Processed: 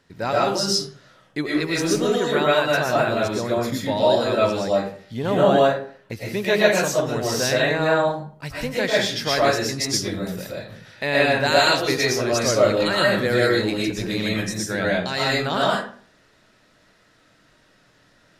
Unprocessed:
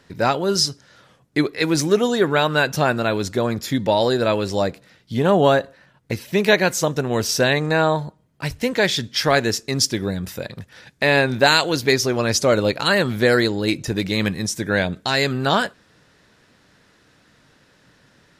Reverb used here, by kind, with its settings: algorithmic reverb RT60 0.48 s, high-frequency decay 0.65×, pre-delay 80 ms, DRR -5.5 dB; trim -7.5 dB

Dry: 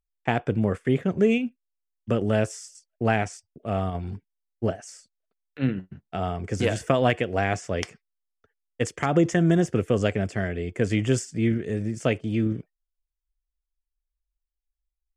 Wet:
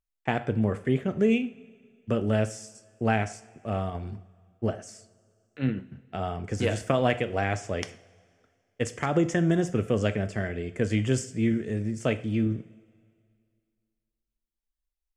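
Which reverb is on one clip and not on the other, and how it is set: two-slope reverb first 0.43 s, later 2.2 s, from -18 dB, DRR 10 dB; trim -3 dB

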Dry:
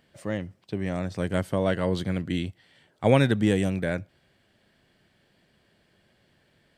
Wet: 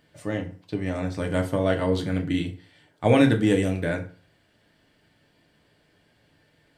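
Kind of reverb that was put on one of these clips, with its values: FDN reverb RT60 0.41 s, low-frequency decay 1×, high-frequency decay 0.75×, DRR 2.5 dB

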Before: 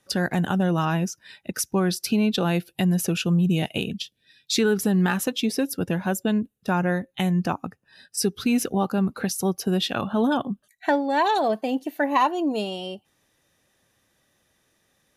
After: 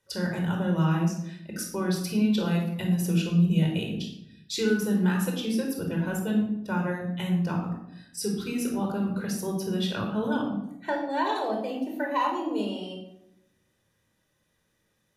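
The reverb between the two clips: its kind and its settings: simulated room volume 2000 m³, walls furnished, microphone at 4.8 m; trim -10.5 dB

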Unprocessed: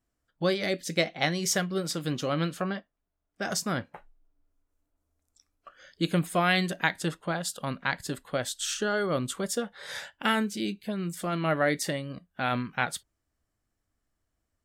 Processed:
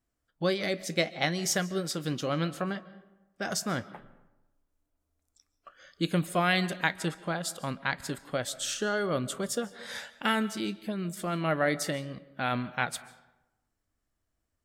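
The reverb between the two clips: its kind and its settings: algorithmic reverb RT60 1 s, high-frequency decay 0.55×, pre-delay 100 ms, DRR 17.5 dB; trim -1.5 dB

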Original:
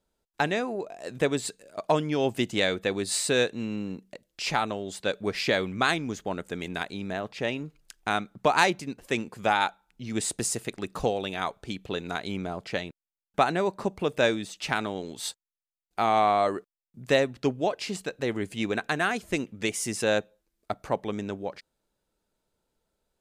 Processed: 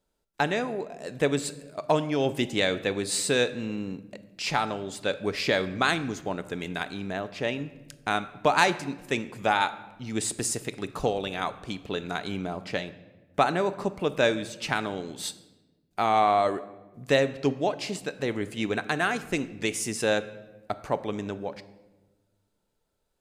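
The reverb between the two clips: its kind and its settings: simulated room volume 700 m³, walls mixed, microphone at 0.35 m

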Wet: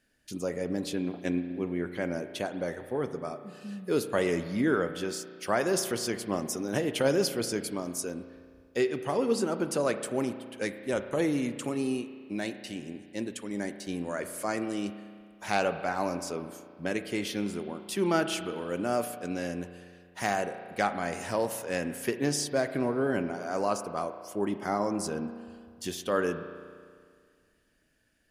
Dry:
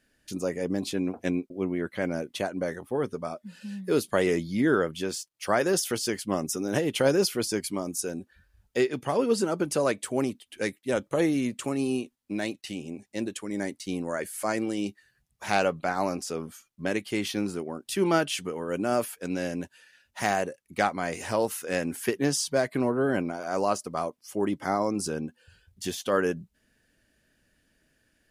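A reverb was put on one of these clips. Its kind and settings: spring tank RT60 2 s, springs 34 ms, chirp 30 ms, DRR 9.5 dB; trim -3 dB

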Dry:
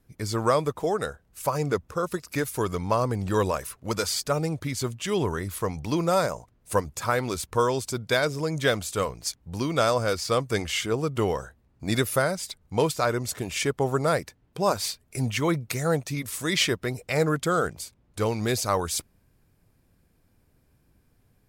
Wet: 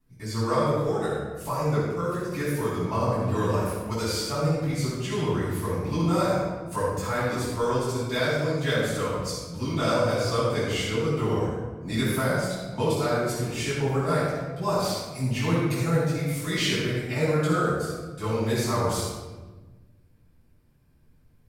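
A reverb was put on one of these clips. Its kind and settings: simulated room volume 900 m³, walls mixed, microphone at 9.6 m; trim -16 dB

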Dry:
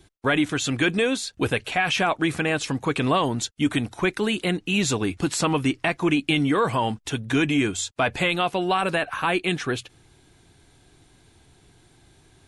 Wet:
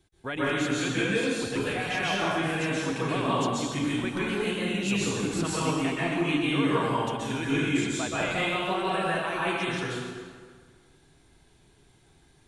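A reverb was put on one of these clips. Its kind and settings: plate-style reverb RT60 1.7 s, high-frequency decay 0.75×, pre-delay 115 ms, DRR -8 dB; trim -12.5 dB

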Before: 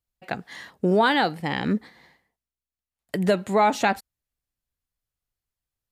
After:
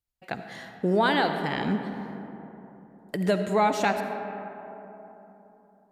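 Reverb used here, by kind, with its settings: algorithmic reverb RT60 3.6 s, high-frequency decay 0.35×, pre-delay 30 ms, DRR 6.5 dB; trim -3.5 dB

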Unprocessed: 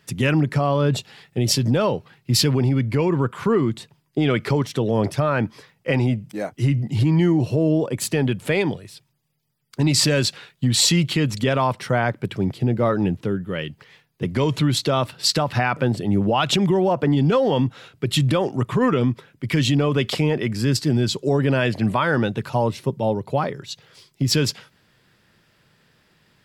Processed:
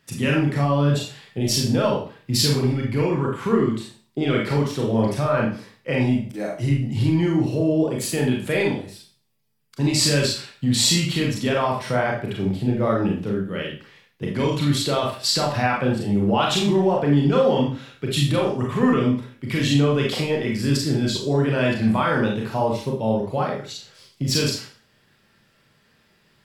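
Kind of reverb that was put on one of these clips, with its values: Schroeder reverb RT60 0.41 s, combs from 28 ms, DRR -2 dB; trim -4.5 dB

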